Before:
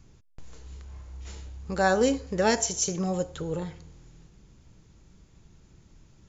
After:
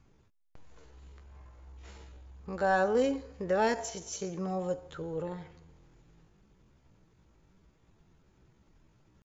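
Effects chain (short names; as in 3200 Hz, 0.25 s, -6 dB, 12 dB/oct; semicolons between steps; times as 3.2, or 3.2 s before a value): tempo 0.68×; overdrive pedal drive 9 dB, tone 1200 Hz, clips at -8 dBFS; gain -4 dB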